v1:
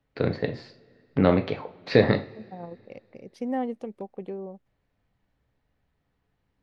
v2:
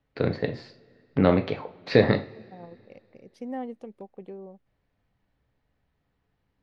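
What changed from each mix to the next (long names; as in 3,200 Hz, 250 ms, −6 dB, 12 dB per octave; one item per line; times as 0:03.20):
second voice −5.5 dB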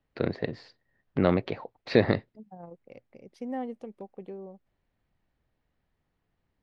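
reverb: off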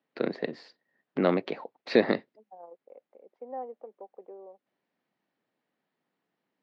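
second voice: add flat-topped band-pass 710 Hz, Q 0.99
master: add high-pass filter 200 Hz 24 dB per octave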